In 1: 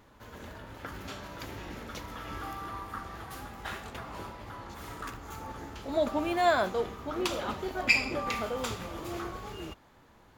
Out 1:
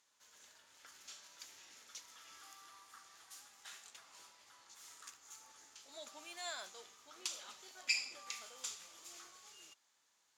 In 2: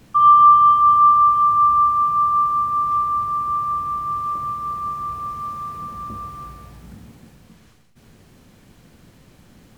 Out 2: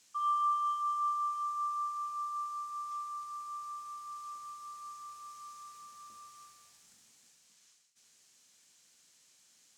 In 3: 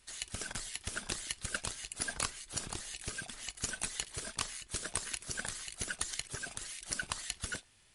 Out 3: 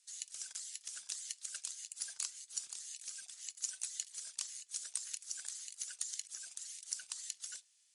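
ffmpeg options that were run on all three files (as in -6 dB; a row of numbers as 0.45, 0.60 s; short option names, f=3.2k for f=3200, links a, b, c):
-af "bandpass=f=6.8k:t=q:w=1.9:csg=0,volume=1dB"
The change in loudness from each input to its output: -13.0, -20.5, -3.5 LU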